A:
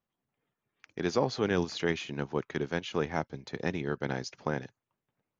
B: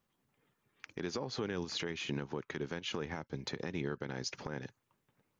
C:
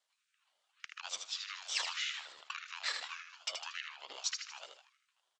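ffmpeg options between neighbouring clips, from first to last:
-af "acompressor=threshold=0.0141:ratio=6,equalizer=f=680:t=o:w=0.33:g=-5,alimiter=level_in=2.99:limit=0.0631:level=0:latency=1:release=134,volume=0.335,volume=2.37"
-af "asuperpass=centerf=4200:order=20:qfactor=0.56,aecho=1:1:78|156|234|312|390|468:0.501|0.236|0.111|0.052|0.0245|0.0115,aeval=exprs='val(0)*sin(2*PI*800*n/s+800*0.5/1.7*sin(2*PI*1.7*n/s))':c=same,volume=2.24"

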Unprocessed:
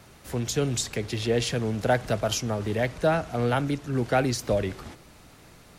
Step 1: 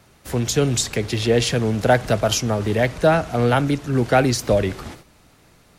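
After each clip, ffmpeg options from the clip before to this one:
-af "agate=range=0.355:threshold=0.00398:ratio=16:detection=peak,volume=2.24"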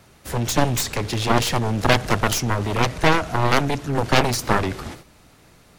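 -af "aeval=exprs='0.75*(cos(1*acos(clip(val(0)/0.75,-1,1)))-cos(1*PI/2))+0.15*(cos(6*acos(clip(val(0)/0.75,-1,1)))-cos(6*PI/2))+0.299*(cos(7*acos(clip(val(0)/0.75,-1,1)))-cos(7*PI/2))':c=same,volume=0.668"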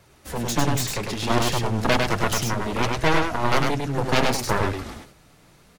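-af "flanger=delay=1.8:depth=5.4:regen=-42:speed=0.66:shape=triangular,aecho=1:1:101:0.668"

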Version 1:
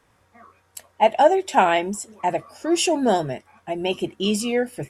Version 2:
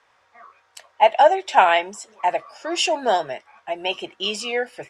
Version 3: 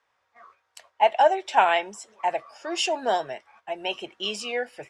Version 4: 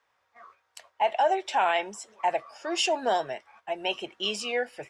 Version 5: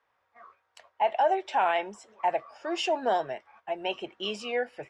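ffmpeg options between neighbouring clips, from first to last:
-filter_complex "[0:a]acrossover=split=530 6500:gain=0.1 1 0.0794[s0][s1][s2];[s0][s1][s2]amix=inputs=3:normalize=0,volume=1.58"
-af "agate=range=0.447:threshold=0.00316:ratio=16:detection=peak,volume=0.596"
-af "alimiter=limit=0.178:level=0:latency=1:release=27"
-af "aemphasis=mode=reproduction:type=75kf"

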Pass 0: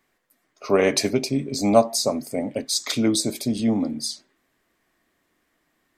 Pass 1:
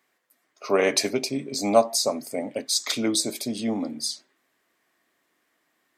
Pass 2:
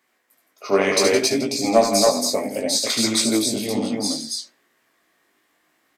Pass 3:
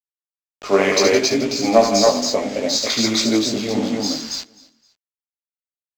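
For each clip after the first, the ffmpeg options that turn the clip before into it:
-af "highpass=f=400:p=1"
-af "acontrast=47,aecho=1:1:72.89|166.2|277:0.562|0.316|0.794,flanger=delay=17:depth=3.3:speed=0.65"
-af "aresample=16000,acrusher=bits=5:mix=0:aa=0.000001,aresample=44100,adynamicsmooth=sensitivity=7:basefreq=5300,aecho=1:1:259|518:0.075|0.027,volume=1.33"

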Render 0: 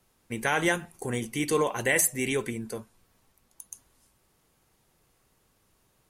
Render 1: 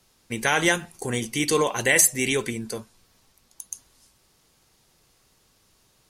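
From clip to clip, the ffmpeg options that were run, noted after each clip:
-af "equalizer=f=4900:w=0.85:g=8.5,volume=1.41"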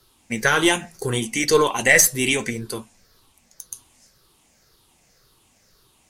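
-af "afftfilt=real='re*pow(10,9/40*sin(2*PI*(0.6*log(max(b,1)*sr/1024/100)/log(2)-(-1.9)*(pts-256)/sr)))':imag='im*pow(10,9/40*sin(2*PI*(0.6*log(max(b,1)*sr/1024/100)/log(2)-(-1.9)*(pts-256)/sr)))':win_size=1024:overlap=0.75,flanger=delay=2.9:depth=6.3:regen=-69:speed=0.64:shape=sinusoidal,aeval=exprs='0.447*(cos(1*acos(clip(val(0)/0.447,-1,1)))-cos(1*PI/2))+0.02*(cos(6*acos(clip(val(0)/0.447,-1,1)))-cos(6*PI/2))+0.00501*(cos(8*acos(clip(val(0)/0.447,-1,1)))-cos(8*PI/2))':c=same,volume=2.11"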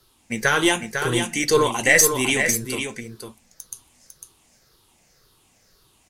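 -af "aecho=1:1:501:0.473,volume=0.891"

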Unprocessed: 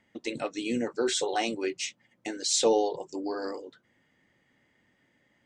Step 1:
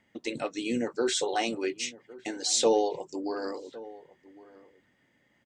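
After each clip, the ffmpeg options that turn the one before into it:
-filter_complex "[0:a]asplit=2[s0][s1];[s1]adelay=1108,volume=0.112,highshelf=f=4000:g=-24.9[s2];[s0][s2]amix=inputs=2:normalize=0"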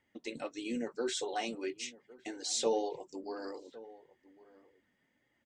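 -af "flanger=delay=2.1:depth=3.1:regen=-39:speed=1.7:shape=triangular,volume=0.631"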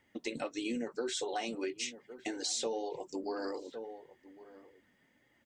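-af "acompressor=threshold=0.0112:ratio=6,volume=2"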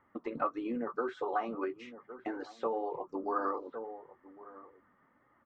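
-af "lowpass=f=1200:t=q:w=8.3"

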